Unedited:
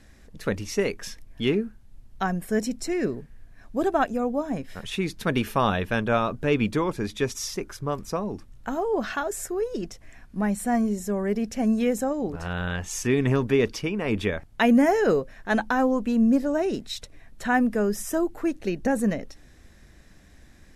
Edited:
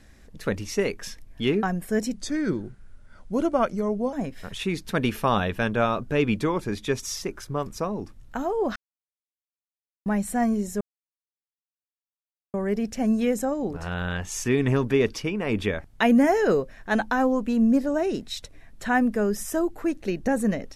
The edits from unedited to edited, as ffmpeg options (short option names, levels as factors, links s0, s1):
-filter_complex "[0:a]asplit=7[s0][s1][s2][s3][s4][s5][s6];[s0]atrim=end=1.632[s7];[s1]atrim=start=2.228:end=2.744[s8];[s2]atrim=start=2.74:end=4.45,asetpts=PTS-STARTPTS,asetrate=37926,aresample=44100,atrim=end_sample=87687,asetpts=PTS-STARTPTS[s9];[s3]atrim=start=4.446:end=9.08,asetpts=PTS-STARTPTS,afade=t=out:st=4.63:d=0.004:c=hsin[s10];[s4]atrim=start=9.08:end=10.38,asetpts=PTS-STARTPTS,volume=0[s11];[s5]atrim=start=10.38:end=11.13,asetpts=PTS-STARTPTS,afade=t=in:d=0.004:c=hsin,afade=t=out:st=0.746:d=0.004:c=hsin,apad=pad_dur=1.73[s12];[s6]atrim=start=11.13,asetpts=PTS-STARTPTS,afade=t=in:d=0.004:c=hsin[s13];[s7][s8]acrossfade=d=0.004:c1=hsin:c2=hsin[s14];[s14][s9]acrossfade=d=0.004:c1=hsin:c2=hsin[s15];[s10][s11][s12][s13]concat=n=4:v=0:a=1[s16];[s15][s16]acrossfade=d=0.004:c1=hsin:c2=hsin"